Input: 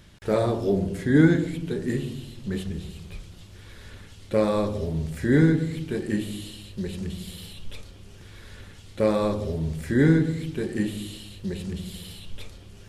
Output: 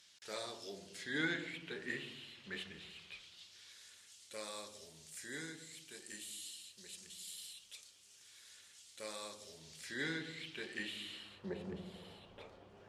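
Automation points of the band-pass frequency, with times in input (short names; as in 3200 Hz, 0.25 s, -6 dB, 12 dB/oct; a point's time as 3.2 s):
band-pass, Q 1.3
0.85 s 5600 Hz
1.49 s 2300 Hz
2.92 s 2300 Hz
3.9 s 7400 Hz
9.41 s 7400 Hz
10.39 s 2900 Hz
10.9 s 2900 Hz
11.6 s 740 Hz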